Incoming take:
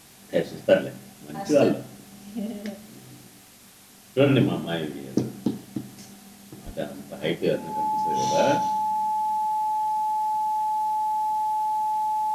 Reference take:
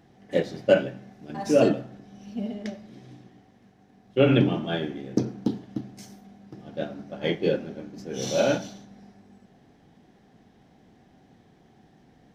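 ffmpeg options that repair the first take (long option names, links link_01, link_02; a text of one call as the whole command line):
ffmpeg -i in.wav -filter_complex "[0:a]adeclick=threshold=4,bandreject=frequency=860:width=30,asplit=3[link_01][link_02][link_03];[link_01]afade=type=out:start_time=6.65:duration=0.02[link_04];[link_02]highpass=frequency=140:width=0.5412,highpass=frequency=140:width=1.3066,afade=type=in:start_time=6.65:duration=0.02,afade=type=out:start_time=6.77:duration=0.02[link_05];[link_03]afade=type=in:start_time=6.77:duration=0.02[link_06];[link_04][link_05][link_06]amix=inputs=3:normalize=0,afwtdn=0.0032" out.wav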